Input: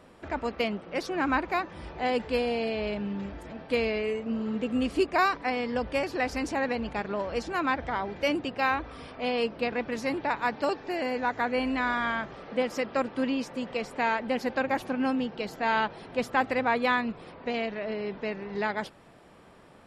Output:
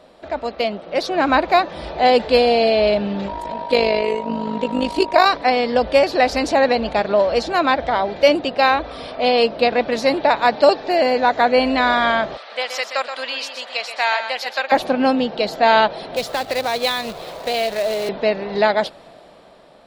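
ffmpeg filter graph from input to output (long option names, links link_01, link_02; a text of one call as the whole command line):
ffmpeg -i in.wav -filter_complex "[0:a]asettb=1/sr,asplit=3[link_01][link_02][link_03];[link_01]atrim=end=3.284[link_04];[link_02]atrim=start=3.28:end=5.26,asetpts=PTS-STARTPTS,afade=type=in:duration=0.004:curve=qsin,afade=type=out:start_time=1.976:duration=0.004:curve=qsin,highshelf=frequency=7800:gain=2.5,aeval=exprs='val(0)+0.0158*sin(2*PI*950*n/s)':channel_layout=same,tremolo=f=51:d=0.667[link_05];[link_03]atrim=start=5.256[link_06];[link_04][link_05]acrossfade=duration=0.004:curve1=hsin:curve2=qsin[link_07];[link_07][link_06]acrossfade=duration=0.004:curve1=qsin:curve2=hsin,asettb=1/sr,asplit=3[link_08][link_09][link_10];[link_08]atrim=end=12.374[link_11];[link_09]atrim=start=12.37:end=14.72,asetpts=PTS-STARTPTS,afade=type=in:duration=0.004:curve=qsin,afade=type=out:start_time=2.346:duration=0.004:curve=qsin,highpass=1200,aecho=1:1:126:0.376,atrim=end_sample=103635[link_12];[link_10]atrim=start=14.716[link_13];[link_11][link_12]acrossfade=duration=0.004:curve1=hsin:curve2=qsin[link_14];[link_14][link_13]acrossfade=duration=0.004:curve1=qsin:curve2=hsin,asettb=1/sr,asplit=3[link_15][link_16][link_17];[link_15]atrim=end=16.164[link_18];[link_16]atrim=start=16.16:end=18.09,asetpts=PTS-STARTPTS,afade=type=in:duration=0.004:curve=qsin,afade=type=out:start_time=1.926:duration=0.004:curve=qsin,equalizer=frequency=240:width=2.3:gain=-10.5,acrossover=split=280|3000[link_19][link_20][link_21];[link_20]acompressor=threshold=-36dB:ratio=3:attack=3.2:release=140:knee=2.83:detection=peak[link_22];[link_19][link_22][link_21]amix=inputs=3:normalize=0,acrusher=bits=2:mode=log:mix=0:aa=0.000001[link_23];[link_17]atrim=start=18.086[link_24];[link_18][link_23]acrossfade=duration=0.004:curve1=hsin:curve2=qsin[link_25];[link_25][link_24]acrossfade=duration=0.004:curve1=qsin:curve2=hsin,equalizer=frequency=100:width_type=o:width=0.67:gain=-7,equalizer=frequency=630:width_type=o:width=0.67:gain=11,equalizer=frequency=4000:width_type=o:width=0.67:gain=11,dynaudnorm=framelen=160:gausssize=13:maxgain=8.5dB,volume=1dB" out.wav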